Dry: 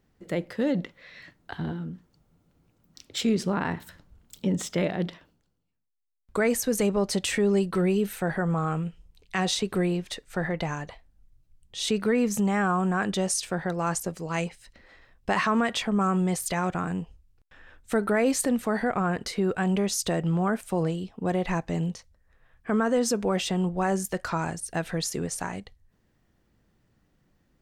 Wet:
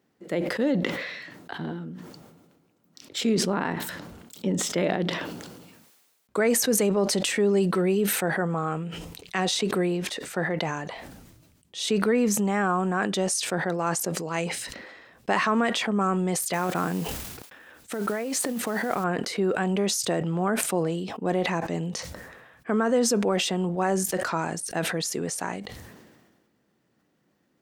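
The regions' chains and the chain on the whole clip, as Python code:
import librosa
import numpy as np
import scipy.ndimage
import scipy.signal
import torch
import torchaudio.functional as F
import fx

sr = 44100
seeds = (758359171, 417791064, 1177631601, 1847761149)

y = fx.chain(x, sr, fx.over_compress(threshold_db=-28.0, ratio=-1.0),
    fx.mod_noise(seeds[0], snr_db=20), at=(16.53, 19.04))
y = scipy.signal.sosfilt(scipy.signal.butter(2, 260.0, 'highpass', fs=sr, output='sos'), y)
y = fx.low_shelf(y, sr, hz=340.0, db=6.0)
y = fx.sustainer(y, sr, db_per_s=38.0)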